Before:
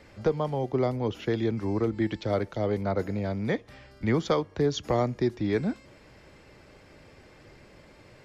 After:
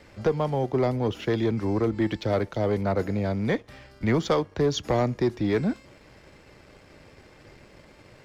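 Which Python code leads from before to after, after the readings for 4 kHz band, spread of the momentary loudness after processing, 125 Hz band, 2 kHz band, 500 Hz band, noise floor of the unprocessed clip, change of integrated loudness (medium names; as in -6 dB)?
+3.0 dB, 4 LU, +2.5 dB, +3.0 dB, +2.0 dB, -54 dBFS, +2.5 dB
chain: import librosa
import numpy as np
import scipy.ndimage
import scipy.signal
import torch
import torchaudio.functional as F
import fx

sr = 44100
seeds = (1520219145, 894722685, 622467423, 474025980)

y = fx.leveller(x, sr, passes=1)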